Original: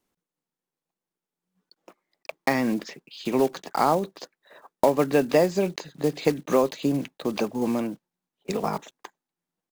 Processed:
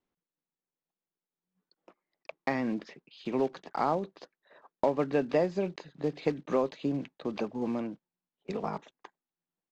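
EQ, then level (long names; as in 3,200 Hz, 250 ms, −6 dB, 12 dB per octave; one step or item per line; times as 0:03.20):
high-frequency loss of the air 160 metres
−6.5 dB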